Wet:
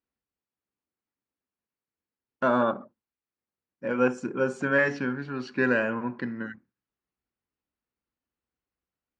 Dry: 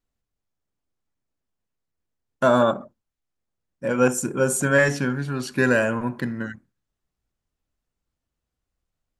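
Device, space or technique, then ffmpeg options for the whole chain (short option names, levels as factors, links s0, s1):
guitar cabinet: -af "highpass=100,equalizer=f=100:t=q:w=4:g=-9,equalizer=f=150:t=q:w=4:g=-8,equalizer=f=640:t=q:w=4:g=-5,equalizer=f=3500:t=q:w=4:g=-7,lowpass=f=4300:w=0.5412,lowpass=f=4300:w=1.3066,volume=0.668"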